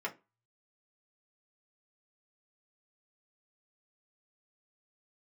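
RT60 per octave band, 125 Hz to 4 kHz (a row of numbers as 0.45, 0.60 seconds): 0.90, 0.30, 0.25, 0.25, 0.20, 0.20 seconds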